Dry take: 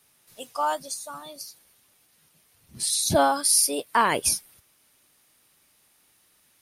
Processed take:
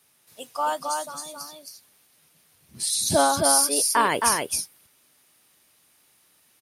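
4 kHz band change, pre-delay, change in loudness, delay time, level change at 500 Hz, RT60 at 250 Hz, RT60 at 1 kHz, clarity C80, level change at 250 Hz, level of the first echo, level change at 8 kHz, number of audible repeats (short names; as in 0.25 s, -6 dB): +1.5 dB, none, +1.0 dB, 0.268 s, +1.5 dB, none, none, none, +1.0 dB, -3.5 dB, +1.5 dB, 1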